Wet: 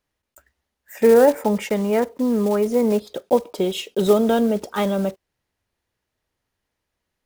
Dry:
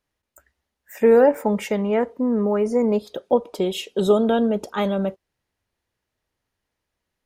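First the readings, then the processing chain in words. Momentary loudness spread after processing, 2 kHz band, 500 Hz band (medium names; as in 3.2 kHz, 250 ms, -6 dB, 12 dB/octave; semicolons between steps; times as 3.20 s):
9 LU, +1.0 dB, +1.0 dB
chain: block-companded coder 5-bit; trim +1 dB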